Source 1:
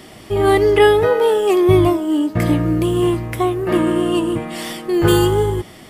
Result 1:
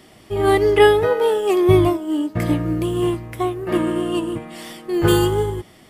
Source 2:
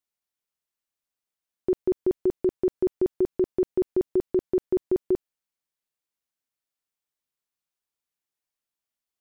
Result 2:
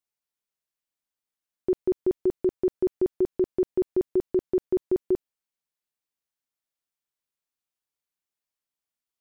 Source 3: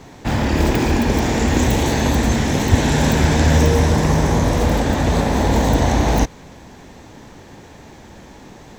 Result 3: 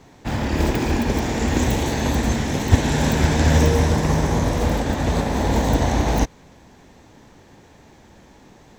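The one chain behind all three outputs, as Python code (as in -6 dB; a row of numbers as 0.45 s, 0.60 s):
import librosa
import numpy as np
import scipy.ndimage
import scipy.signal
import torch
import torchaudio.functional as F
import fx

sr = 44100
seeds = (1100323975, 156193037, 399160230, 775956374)

y = fx.upward_expand(x, sr, threshold_db=-24.0, expansion=1.5)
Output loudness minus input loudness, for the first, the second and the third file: -2.5 LU, -0.5 LU, -3.5 LU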